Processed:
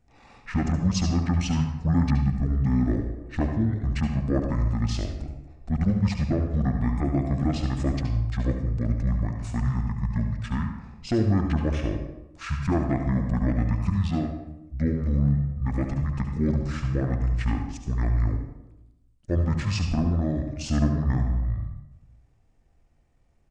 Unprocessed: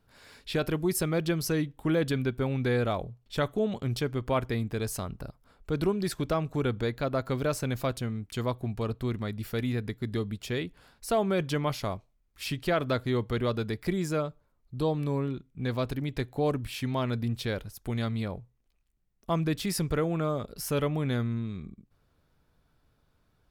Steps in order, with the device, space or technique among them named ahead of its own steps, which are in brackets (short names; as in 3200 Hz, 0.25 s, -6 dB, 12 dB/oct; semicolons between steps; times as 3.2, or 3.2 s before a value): monster voice (pitch shift -11.5 st; low shelf 250 Hz +5.5 dB; echo 71 ms -10.5 dB; reverb RT60 0.90 s, pre-delay 67 ms, DRR 6 dB); 2.2–3.37 dynamic EQ 930 Hz, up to -8 dB, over -46 dBFS, Q 1